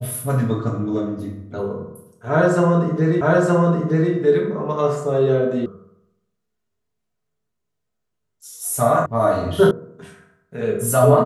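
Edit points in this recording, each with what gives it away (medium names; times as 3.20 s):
3.21 s: repeat of the last 0.92 s
5.66 s: sound stops dead
9.06 s: sound stops dead
9.71 s: sound stops dead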